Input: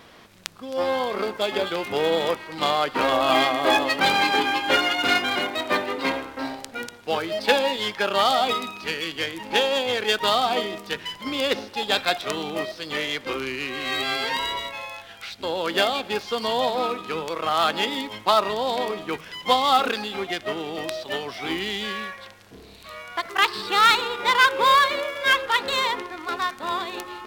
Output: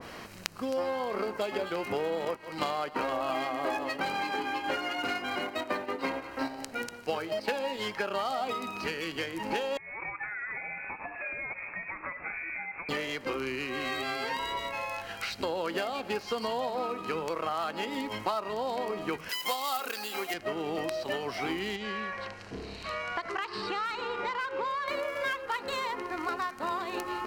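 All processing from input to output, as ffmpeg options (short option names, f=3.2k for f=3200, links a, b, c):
-filter_complex "[0:a]asettb=1/sr,asplit=3[a][b][c];[a]atrim=end=2.254[d];[b]atrim=start=2.25:end=7.67,asetpts=PTS-STARTPTS,afade=t=in:d=0.004:c=qsin,afade=t=out:st=5.416:d=0.004:c=qsin,agate=range=-7dB:threshold=-30dB:ratio=16:release=100:detection=peak,aecho=1:1:175:0.1,atrim=end_sample=239022[e];[c]atrim=start=7.666[f];[d][e]acrossfade=d=0.004:c1=hsin:c2=qsin[g];[g][f]acrossfade=d=0.004:c1=qsin:c2=hsin,asettb=1/sr,asplit=3[h][i][j];[h]atrim=end=9.774[k];[i]atrim=start=9.77:end=12.89,asetpts=PTS-STARTPTS,afade=t=in:d=0.004:c=qsin,afade=t=out:st=3.116:d=0.004:c=qsin,acompressor=threshold=-36dB:ratio=10:attack=3.2:release=140:knee=1:detection=peak,lowpass=f=2.3k:t=q:w=0.5098,lowpass=f=2.3k:t=q:w=0.6013,lowpass=f=2.3k:t=q:w=0.9,lowpass=f=2.3k:t=q:w=2.563,afreqshift=-2700[l];[j]atrim=start=12.886[m];[k][l]acrossfade=d=0.004:c1=hsin:c2=qsin[n];[n][m]acrossfade=d=0.004:c1=qsin:c2=hsin,asettb=1/sr,asplit=3[o][p][q];[o]atrim=end=19.294[r];[p]atrim=start=19.29:end=20.34,asetpts=PTS-STARTPTS,afade=t=in:d=0.004:c=qsin,afade=t=out:st=1.046:d=0.004:c=qsin,highpass=150,aemphasis=mode=production:type=riaa[s];[q]atrim=start=20.336[t];[r][s]acrossfade=d=0.004:c1=hsin:c2=qsin[u];[u][t]acrossfade=d=0.004:c1=qsin:c2=hsin,asettb=1/sr,asplit=3[v][w][x];[v]atrim=end=21.764[y];[w]atrim=start=21.76:end=24.88,asetpts=PTS-STARTPTS,afade=t=in:d=0.004:c=qsin,afade=t=out:st=3.116:d=0.004:c=qsin,lowpass=5.6k,asoftclip=type=hard:threshold=-8.5dB,acompressor=threshold=-35dB:ratio=2:attack=3.2:release=140:knee=1:detection=peak[z];[x]atrim=start=24.876[aa];[y][z]acrossfade=d=0.004:c1=hsin:c2=qsin[ab];[ab][aa]acrossfade=d=0.004:c1=qsin:c2=hsin,bandreject=f=3.5k:w=5.4,acompressor=threshold=-35dB:ratio=6,adynamicequalizer=threshold=0.00501:dfrequency=1700:dqfactor=0.7:tfrequency=1700:tqfactor=0.7:attack=5:release=100:ratio=0.375:range=2:mode=cutabove:tftype=highshelf,volume=5.5dB"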